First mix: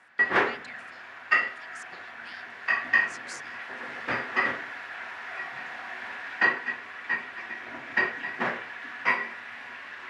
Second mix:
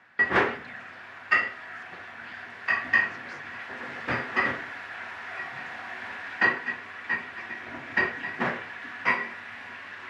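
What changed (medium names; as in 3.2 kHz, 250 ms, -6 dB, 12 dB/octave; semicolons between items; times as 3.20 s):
speech: add distance through air 260 m; master: add bass shelf 160 Hz +11.5 dB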